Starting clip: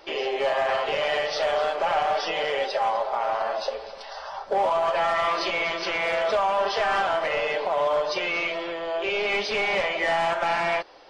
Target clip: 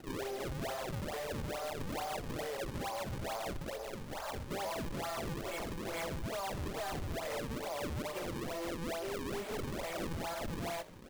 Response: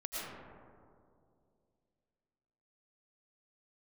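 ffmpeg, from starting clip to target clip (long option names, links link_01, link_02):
-filter_complex "[0:a]lowpass=2400,lowshelf=frequency=420:gain=8.5,bandreject=frequency=60:width_type=h:width=6,bandreject=frequency=120:width_type=h:width=6,bandreject=frequency=180:width_type=h:width=6,bandreject=frequency=240:width_type=h:width=6,bandreject=frequency=300:width_type=h:width=6,bandreject=frequency=360:width_type=h:width=6,bandreject=frequency=420:width_type=h:width=6,bandreject=frequency=480:width_type=h:width=6,bandreject=frequency=540:width_type=h:width=6,bandreject=frequency=600:width_type=h:width=6,acompressor=threshold=-30dB:ratio=6,aphaser=in_gain=1:out_gain=1:delay=3.7:decay=0.25:speed=1.5:type=sinusoidal,acrusher=samples=37:mix=1:aa=0.000001:lfo=1:lforange=59.2:lforate=2.3,asoftclip=type=tanh:threshold=-31dB,asplit=2[link_01][link_02];[link_02]asplit=4[link_03][link_04][link_05][link_06];[link_03]adelay=82,afreqshift=-49,volume=-19dB[link_07];[link_04]adelay=164,afreqshift=-98,volume=-25.2dB[link_08];[link_05]adelay=246,afreqshift=-147,volume=-31.4dB[link_09];[link_06]adelay=328,afreqshift=-196,volume=-37.6dB[link_10];[link_07][link_08][link_09][link_10]amix=inputs=4:normalize=0[link_11];[link_01][link_11]amix=inputs=2:normalize=0,volume=-3.5dB"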